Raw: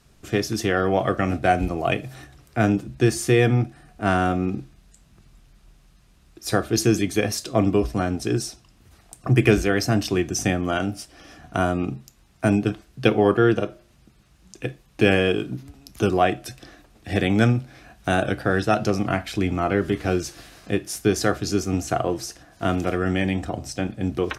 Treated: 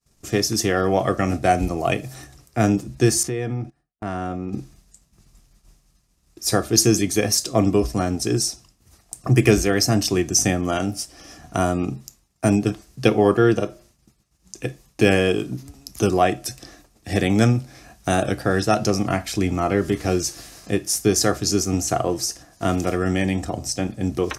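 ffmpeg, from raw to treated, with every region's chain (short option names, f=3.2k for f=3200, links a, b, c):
-filter_complex "[0:a]asettb=1/sr,asplit=3[a][b][c];[a]atrim=end=3.234[d];[b]atrim=start=3.23:end=4.53,asetpts=PTS-STARTPTS,afade=t=in:d=0.004:c=qsin,afade=t=out:st=1.296:d=0.004:c=qsin,agate=range=-20dB:threshold=-37dB:ratio=16:release=100:detection=peak,lowpass=f=2.4k:p=1,acompressor=threshold=-28dB:ratio=2.5:attack=3.2:release=140:knee=1:detection=peak[e];[c]atrim=start=4.526[f];[d][e]acrossfade=d=0.004:c1=hsin:c2=qsin[g];[g][f]acrossfade=d=0.004:c1=qsin:c2=hsin,agate=range=-33dB:threshold=-47dB:ratio=3:detection=peak,highshelf=f=4.4k:t=q:w=1.5:g=6.5,bandreject=f=1.5k:w=13,volume=1.5dB"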